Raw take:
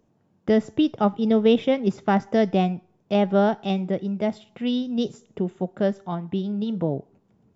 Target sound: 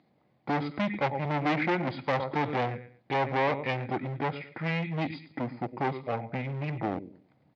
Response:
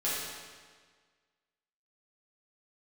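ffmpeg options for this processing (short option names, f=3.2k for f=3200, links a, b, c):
-af "aecho=1:1:109|218|327:0.15|0.0389|0.0101,volume=26.5dB,asoftclip=hard,volume=-26.5dB,asetrate=29433,aresample=44100,atempo=1.49831,highpass=240,equalizer=f=270:t=q:w=4:g=-3,equalizer=f=420:t=q:w=4:g=-7,equalizer=f=800:t=q:w=4:g=7,equalizer=f=2.1k:t=q:w=4:g=8,lowpass=f=5k:w=0.5412,lowpass=f=5k:w=1.3066,volume=4.5dB"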